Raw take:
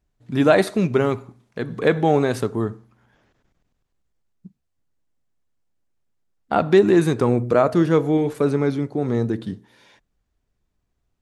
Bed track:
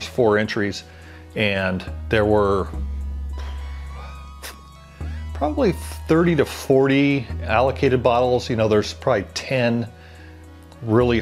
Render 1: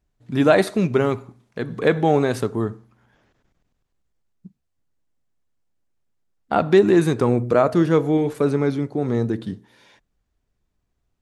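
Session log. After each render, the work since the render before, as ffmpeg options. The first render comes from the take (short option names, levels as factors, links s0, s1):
-af anull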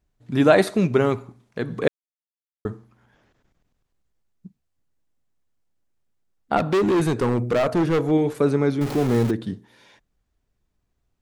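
-filter_complex "[0:a]asplit=3[s0][s1][s2];[s0]afade=t=out:st=6.56:d=0.02[s3];[s1]volume=6.68,asoftclip=hard,volume=0.15,afade=t=in:st=6.56:d=0.02,afade=t=out:st=8.1:d=0.02[s4];[s2]afade=t=in:st=8.1:d=0.02[s5];[s3][s4][s5]amix=inputs=3:normalize=0,asettb=1/sr,asplit=3[s6][s7][s8];[s6]atrim=end=8.814[s9];[s7]atrim=start=8.81:end=9.31,asetpts=PTS-STARTPTS,afade=t=in:d=0.004:c=qsin,afade=t=out:st=0.496:d=0.004:c=qsin,aeval=exprs='val(0)+0.5*0.0562*sgn(val(0))':c=same[s10];[s8]atrim=start=9.306[s11];[s9][s10]acrossfade=d=0.004:c1=hsin:c2=qsin[s12];[s12][s11]acrossfade=d=0.004:c1=qsin:c2=hsin,asplit=3[s13][s14][s15];[s13]atrim=end=1.88,asetpts=PTS-STARTPTS,afade=t=out:st=1.876:d=0.004:c=hsin[s16];[s14]atrim=start=1.88:end=2.65,asetpts=PTS-STARTPTS,volume=0[s17];[s15]atrim=start=2.65,asetpts=PTS-STARTPTS,afade=t=in:d=0.004:c=hsin[s18];[s16][s17][s18]concat=n=3:v=0:a=1"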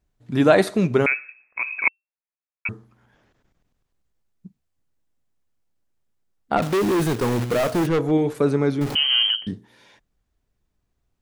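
-filter_complex "[0:a]asettb=1/sr,asplit=3[s0][s1][s2];[s0]atrim=end=1.064[s3];[s1]atrim=start=1.06:end=2.69,asetpts=PTS-STARTPTS,afade=t=in:d=0.004:c=qsin,afade=t=out:st=1.626:d=0.004:c=qsin,lowpass=f=2300:t=q:w=0.5098,lowpass=f=2300:t=q:w=0.6013,lowpass=f=2300:t=q:w=0.9,lowpass=f=2300:t=q:w=2.563,afreqshift=-2700[s4];[s2]atrim=start=2.686[s5];[s3][s4]acrossfade=d=0.004:c1=hsin:c2=qsin[s6];[s6][s5]acrossfade=d=0.004:c1=qsin:c2=hsin,asettb=1/sr,asplit=3[s7][s8][s9];[s7]atrim=end=6.624[s10];[s8]atrim=start=6.62:end=7.87,asetpts=PTS-STARTPTS,afade=t=in:d=0.004:c=qsin,afade=t=out:st=1.246:d=0.004:c=qsin,acrusher=bits=2:mode=log:mix=0:aa=0.000001[s11];[s9]atrim=start=7.866[s12];[s10][s11]acrossfade=d=0.004:c1=hsin:c2=qsin[s13];[s13][s12]acrossfade=d=0.004:c1=qsin:c2=hsin,asettb=1/sr,asplit=3[s14][s15][s16];[s14]atrim=end=8.954[s17];[s15]atrim=start=8.95:end=9.47,asetpts=PTS-STARTPTS,afade=t=in:d=0.004:c=qsin,afade=t=out:st=0.516:d=0.004:c=qsin,lowpass=f=2800:t=q:w=0.5098,lowpass=f=2800:t=q:w=0.6013,lowpass=f=2800:t=q:w=0.9,lowpass=f=2800:t=q:w=2.563,afreqshift=-3300[s18];[s16]atrim=start=9.466[s19];[s17][s18]acrossfade=d=0.004:c1=hsin:c2=qsin[s20];[s20][s19]acrossfade=d=0.004:c1=qsin:c2=hsin"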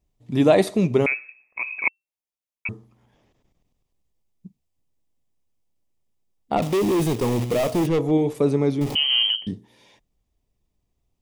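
-af "equalizer=f=1500:t=o:w=0.5:g=-13,bandreject=f=4200:w=19"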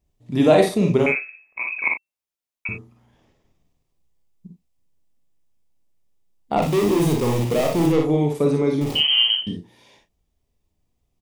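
-filter_complex "[0:a]asplit=2[s0][s1];[s1]adelay=34,volume=0.335[s2];[s0][s2]amix=inputs=2:normalize=0,aecho=1:1:47|59:0.501|0.501"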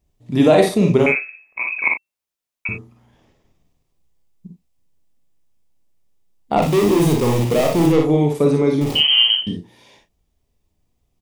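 -af "volume=1.5,alimiter=limit=0.708:level=0:latency=1"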